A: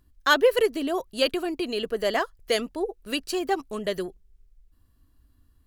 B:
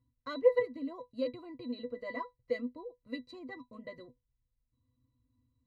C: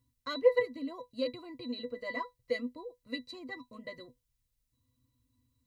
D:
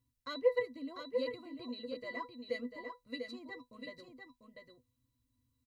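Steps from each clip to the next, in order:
resonances in every octave B, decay 0.12 s
high-shelf EQ 2,300 Hz +11 dB
single-tap delay 695 ms −6 dB; level −5 dB

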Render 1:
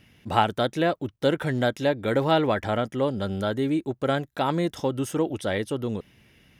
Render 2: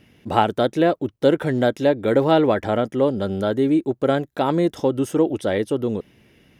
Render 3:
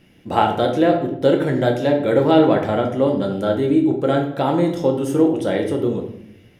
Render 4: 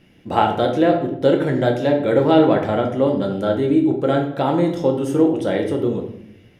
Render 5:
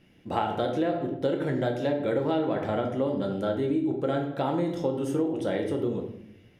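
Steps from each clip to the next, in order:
parametric band 380 Hz +7.5 dB 2 octaves
rectangular room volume 150 cubic metres, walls mixed, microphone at 0.78 metres; level −1 dB
high-shelf EQ 8,900 Hz −6.5 dB
downward compressor, threshold −16 dBFS, peak gain reduction 8 dB; level −6.5 dB

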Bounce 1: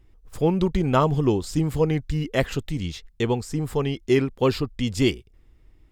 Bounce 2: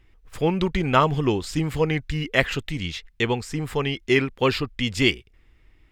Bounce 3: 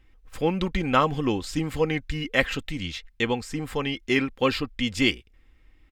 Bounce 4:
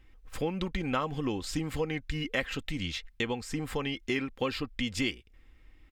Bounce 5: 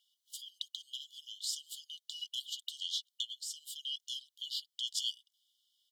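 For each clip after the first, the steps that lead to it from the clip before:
parametric band 2,200 Hz +11 dB 1.9 octaves; level −2 dB
comb filter 3.8 ms, depth 39%; level −2.5 dB
downward compressor 3 to 1, threshold −30 dBFS, peak gain reduction 11.5 dB
linear-phase brick-wall high-pass 2,900 Hz; level +3 dB

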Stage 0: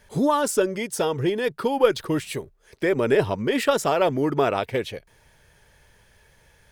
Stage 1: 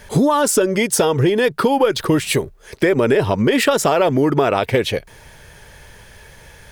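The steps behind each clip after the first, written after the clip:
in parallel at +0.5 dB: brickwall limiter −17 dBFS, peak gain reduction 11.5 dB
on the sum: downward compressor 4 to 1, threshold −21 dBFS, peak gain reduction 10.5 dB
level +8 dB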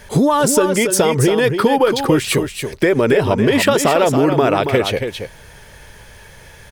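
single-tap delay 279 ms −7.5 dB
level +1 dB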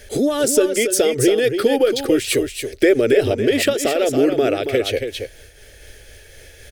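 phaser with its sweep stopped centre 410 Hz, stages 4
amplitude modulation by smooth noise, depth 65%
level +2.5 dB

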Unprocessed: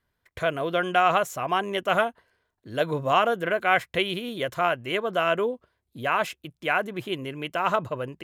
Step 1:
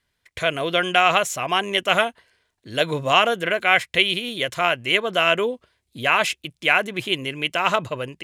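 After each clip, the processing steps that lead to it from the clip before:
flat-topped bell 4,500 Hz +9 dB 2.7 octaves
automatic gain control gain up to 4.5 dB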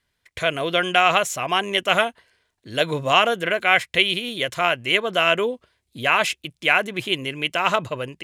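no processing that can be heard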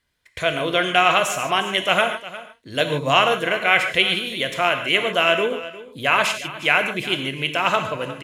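single-tap delay 356 ms −16.5 dB
reverb whose tail is shaped and stops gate 170 ms flat, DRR 6 dB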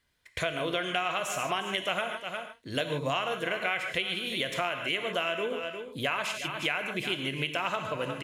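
downward compressor 6 to 1, threshold −26 dBFS, peak gain reduction 14.5 dB
level −1.5 dB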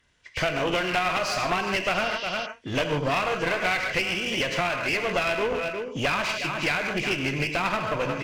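hearing-aid frequency compression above 2,200 Hz 1.5 to 1
asymmetric clip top −37 dBFS
healed spectral selection 0:01.97–0:02.43, 2,700–6,300 Hz before
level +8.5 dB

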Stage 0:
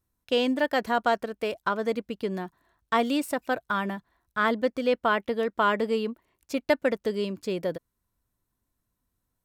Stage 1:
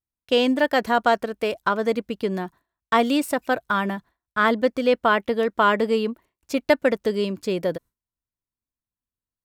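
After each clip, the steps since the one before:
noise gate with hold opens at −52 dBFS
level +5 dB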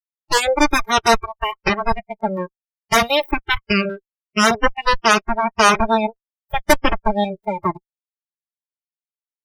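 harmonic generator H 7 −17 dB, 8 −7 dB, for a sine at −4.5 dBFS
noise reduction from a noise print of the clip's start 29 dB
level +1.5 dB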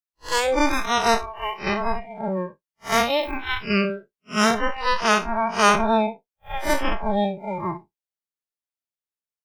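spectrum smeared in time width 107 ms

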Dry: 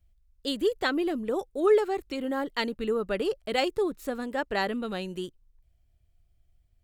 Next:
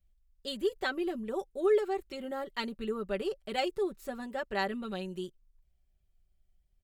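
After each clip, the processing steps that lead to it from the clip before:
comb filter 5.2 ms, depth 68%
level −7.5 dB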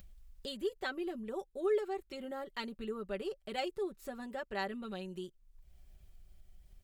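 upward compression, threshold −33 dBFS
level −5.5 dB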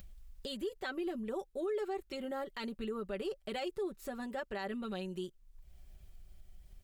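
brickwall limiter −33 dBFS, peak gain reduction 9.5 dB
level +3 dB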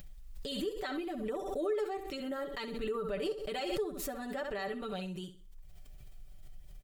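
comb filter 6.8 ms, depth 61%
flutter between parallel walls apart 11.1 metres, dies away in 0.34 s
background raised ahead of every attack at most 43 dB per second

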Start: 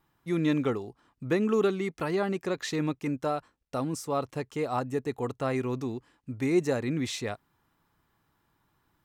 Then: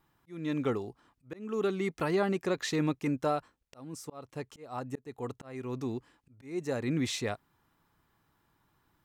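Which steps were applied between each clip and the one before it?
volume swells 547 ms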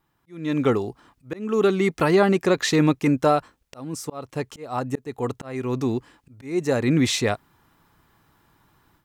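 automatic gain control gain up to 11 dB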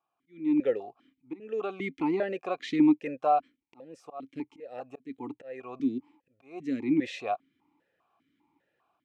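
formant filter that steps through the vowels 5 Hz
level +1 dB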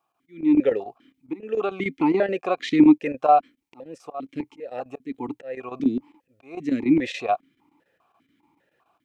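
square-wave tremolo 7 Hz, depth 65%, duty 85%
level +8 dB

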